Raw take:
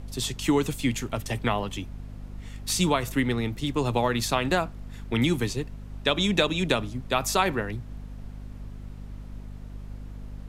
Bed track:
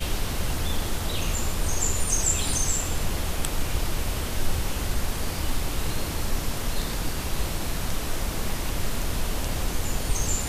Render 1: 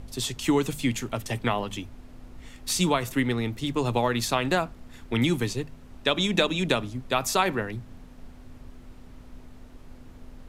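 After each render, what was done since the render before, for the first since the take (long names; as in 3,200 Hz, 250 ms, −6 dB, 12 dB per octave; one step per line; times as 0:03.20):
hum removal 50 Hz, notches 4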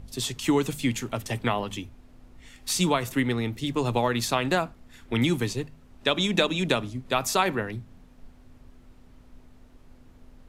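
noise reduction from a noise print 6 dB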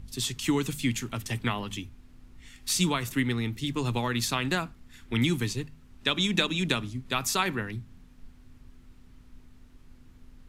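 parametric band 610 Hz −10.5 dB 1.3 octaves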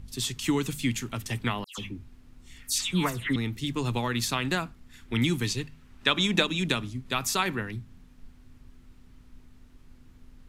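0:01.64–0:03.36: all-pass dispersion lows, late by 139 ms, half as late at 2,300 Hz
0:05.43–0:06.42: parametric band 4,700 Hz → 660 Hz +5.5 dB 2.2 octaves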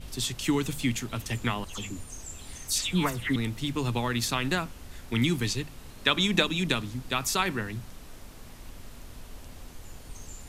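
mix in bed track −18.5 dB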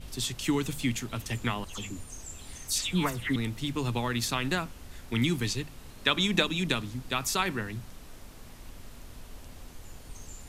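level −1.5 dB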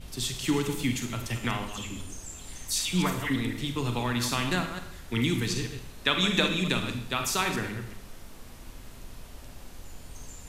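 delay that plays each chunk backwards 126 ms, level −9 dB
four-comb reverb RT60 0.67 s, combs from 33 ms, DRR 6 dB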